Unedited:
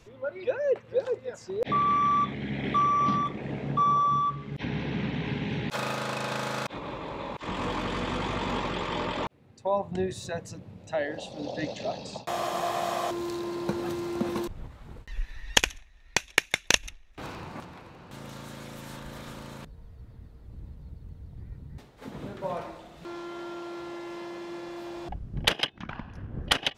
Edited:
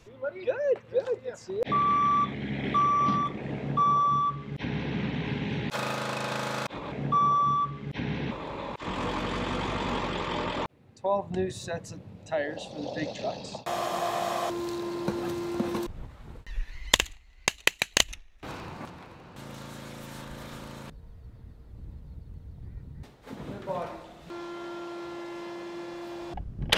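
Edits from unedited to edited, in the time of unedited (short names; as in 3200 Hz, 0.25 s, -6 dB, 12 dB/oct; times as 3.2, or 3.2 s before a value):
3.57–4.96 copy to 6.92
15.32–16.85 speed 110%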